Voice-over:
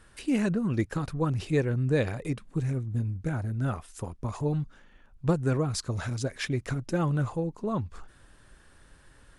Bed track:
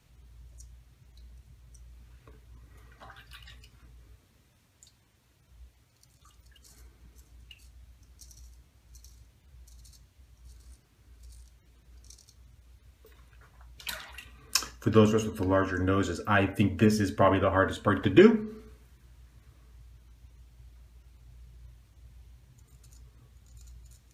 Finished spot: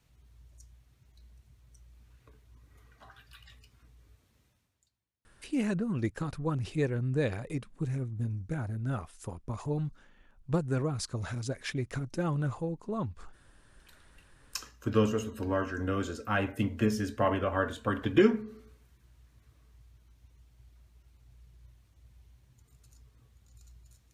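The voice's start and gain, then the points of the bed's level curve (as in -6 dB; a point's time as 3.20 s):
5.25 s, -4.0 dB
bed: 4.47 s -5 dB
5.16 s -29 dB
13.66 s -29 dB
14.88 s -5 dB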